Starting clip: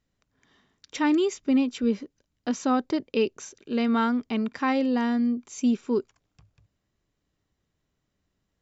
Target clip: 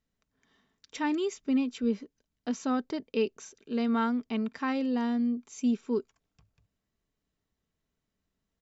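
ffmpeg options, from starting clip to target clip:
ffmpeg -i in.wav -af "aecho=1:1:4.5:0.3,volume=-6dB" out.wav

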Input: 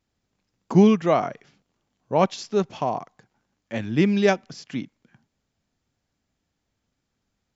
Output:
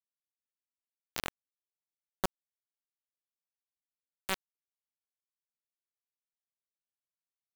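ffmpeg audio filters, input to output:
ffmpeg -i in.wav -af "areverse,acompressor=threshold=-32dB:ratio=8,areverse,acrusher=bits=3:mix=0:aa=0.000001,volume=1.5dB" out.wav

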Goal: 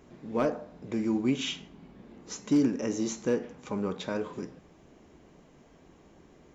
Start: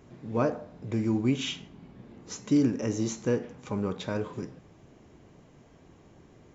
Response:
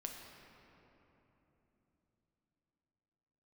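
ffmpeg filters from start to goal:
-af "equalizer=frequency=110:width_type=o:width=0.46:gain=-14,asoftclip=type=hard:threshold=-17.5dB"

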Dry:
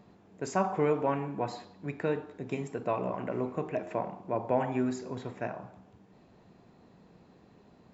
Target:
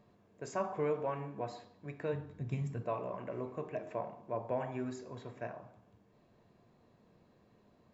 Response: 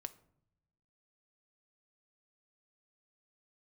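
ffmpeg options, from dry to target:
-filter_complex "[0:a]asplit=3[link_01][link_02][link_03];[link_01]afade=type=out:start_time=2.12:duration=0.02[link_04];[link_02]asubboost=boost=11:cutoff=150,afade=type=in:start_time=2.12:duration=0.02,afade=type=out:start_time=2.81:duration=0.02[link_05];[link_03]afade=type=in:start_time=2.81:duration=0.02[link_06];[link_04][link_05][link_06]amix=inputs=3:normalize=0[link_07];[1:a]atrim=start_sample=2205,asetrate=74970,aresample=44100[link_08];[link_07][link_08]afir=irnorm=-1:irlink=0,volume=1dB"

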